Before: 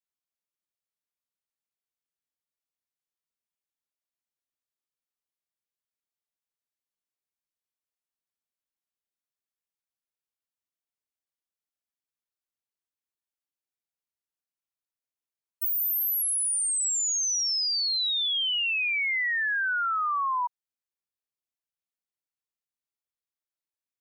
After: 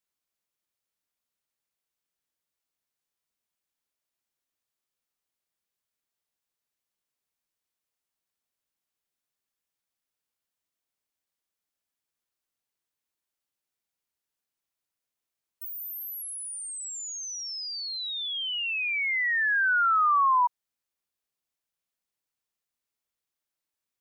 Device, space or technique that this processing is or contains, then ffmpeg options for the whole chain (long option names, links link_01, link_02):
de-esser from a sidechain: -filter_complex "[0:a]asplit=2[link_01][link_02];[link_02]highpass=4800,apad=whole_len=1058832[link_03];[link_01][link_03]sidechaincompress=threshold=-48dB:ratio=3:attack=0.74:release=23,volume=5.5dB"